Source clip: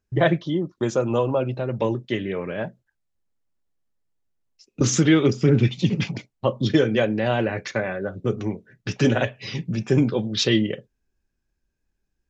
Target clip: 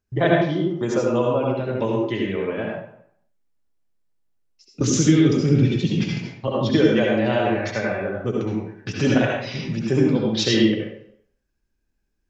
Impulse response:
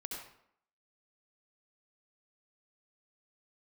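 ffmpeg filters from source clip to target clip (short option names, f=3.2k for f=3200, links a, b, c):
-filter_complex "[1:a]atrim=start_sample=2205[a];[0:a][a]afir=irnorm=-1:irlink=0,asettb=1/sr,asplit=3[b][c][d];[b]atrim=end=4.834[e];[c]atrim=start=4.83:end=6.48,asetpts=PTS-STARTPTS,afade=t=in:d=0.004:c=qsin,afade=t=out:st=1.646:d=0.004:c=qsin,acrossover=split=450|3000[f][g][h];[g]acompressor=threshold=-42dB:ratio=2[i];[f][i][h]amix=inputs=3:normalize=0[j];[d]atrim=start=6.476[k];[e][j]acrossfade=d=0.004:c1=hsin:c2=qsin[l];[l][k]acrossfade=d=0.004:c1=qsin:c2=hsin,volume=3dB"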